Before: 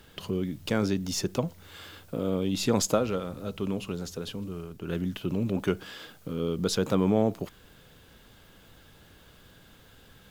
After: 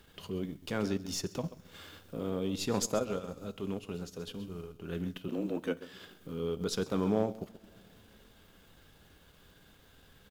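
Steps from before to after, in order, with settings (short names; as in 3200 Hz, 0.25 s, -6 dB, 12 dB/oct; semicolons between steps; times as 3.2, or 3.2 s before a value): two-slope reverb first 0.29 s, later 2.7 s, from -17 dB, DRR 10 dB; 5.28–5.93 frequency shift +77 Hz; echo 0.133 s -14 dB; transient shaper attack -4 dB, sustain -8 dB; gain -5 dB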